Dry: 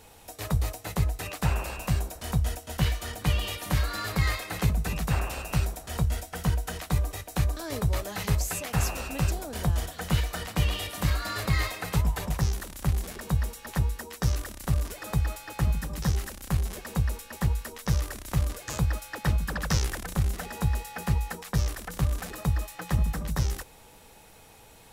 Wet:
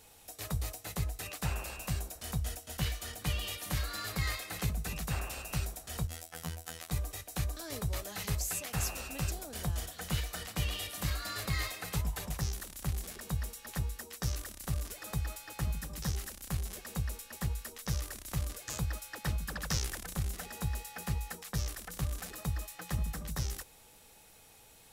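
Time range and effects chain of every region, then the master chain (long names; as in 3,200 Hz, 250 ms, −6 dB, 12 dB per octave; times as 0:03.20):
0:06.07–0:06.91: low-shelf EQ 150 Hz −6.5 dB + phases set to zero 81.9 Hz
whole clip: high-shelf EQ 2,800 Hz +7.5 dB; notch filter 960 Hz, Q 20; level −9 dB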